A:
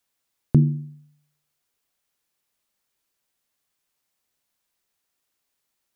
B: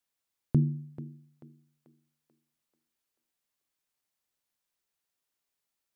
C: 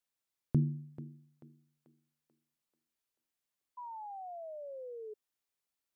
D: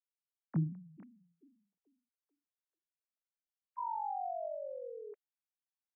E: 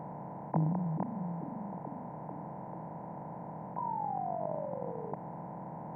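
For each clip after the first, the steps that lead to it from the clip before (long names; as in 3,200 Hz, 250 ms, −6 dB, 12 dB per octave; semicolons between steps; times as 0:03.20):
feedback echo with a high-pass in the loop 438 ms, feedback 48%, high-pass 290 Hz, level −11 dB; level −8 dB
sound drawn into the spectrogram fall, 0:03.77–0:05.14, 420–1,000 Hz −40 dBFS; level −4.5 dB
three sine waves on the formant tracks; level −1 dB
compressor on every frequency bin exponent 0.2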